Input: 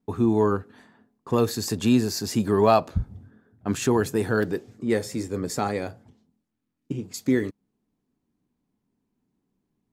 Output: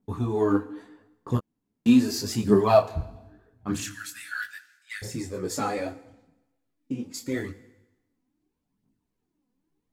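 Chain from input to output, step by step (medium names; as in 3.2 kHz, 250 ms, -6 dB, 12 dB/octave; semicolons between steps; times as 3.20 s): 3.84–5.02 s: steep high-pass 1.4 kHz 72 dB/octave; phaser 0.79 Hz, delay 4.2 ms, feedback 64%; FDN reverb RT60 0.97 s, low-frequency decay 1×, high-frequency decay 1×, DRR 12.5 dB; 1.37–1.86 s: room tone; detune thickener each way 31 cents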